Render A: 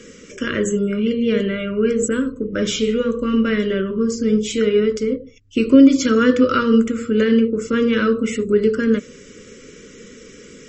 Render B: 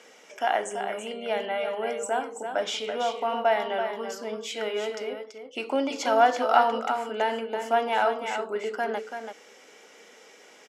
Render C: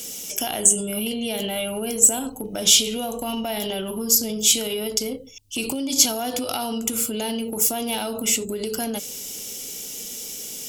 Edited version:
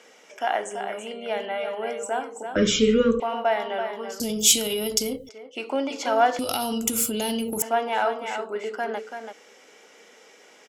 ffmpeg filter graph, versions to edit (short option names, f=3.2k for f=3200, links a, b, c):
-filter_complex "[2:a]asplit=2[a][b];[1:a]asplit=4[c][d][e][f];[c]atrim=end=2.562[g];[0:a]atrim=start=2.558:end=3.202[h];[d]atrim=start=3.198:end=4.202[i];[a]atrim=start=4.198:end=5.292[j];[e]atrim=start=5.288:end=6.392[k];[b]atrim=start=6.388:end=7.622[l];[f]atrim=start=7.618[m];[g][h]acrossfade=d=0.004:c1=hsin:c2=hsin[n];[n][i]acrossfade=d=0.004:c1=hsin:c2=hsin[o];[o][j]acrossfade=d=0.004:c1=hsin:c2=hsin[p];[p][k]acrossfade=d=0.004:c1=hsin:c2=hsin[q];[q][l]acrossfade=d=0.004:c1=hsin:c2=hsin[r];[r][m]acrossfade=d=0.004:c1=hsin:c2=hsin"